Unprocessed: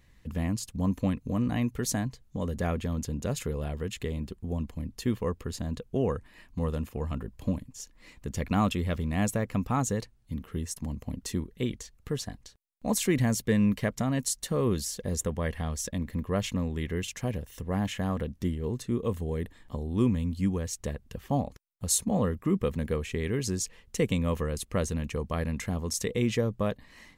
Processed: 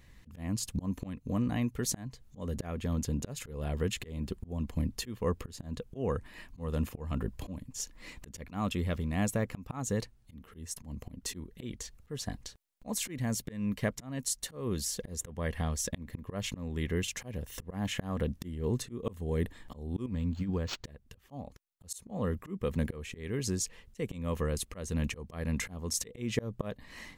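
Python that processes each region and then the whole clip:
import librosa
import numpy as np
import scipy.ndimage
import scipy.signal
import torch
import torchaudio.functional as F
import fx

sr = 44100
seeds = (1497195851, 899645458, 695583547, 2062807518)

y = fx.chain(x, sr, fx.high_shelf(hz=11000.0, db=5.0),
    fx.over_compress(threshold_db=-27.0, ratio=-0.5),
    fx.resample_linear(factor=4), at=(20.06, 20.85))
y = fx.auto_swell(y, sr, attack_ms=337.0)
y = fx.rider(y, sr, range_db=4, speed_s=0.5)
y = y * librosa.db_to_amplitude(1.0)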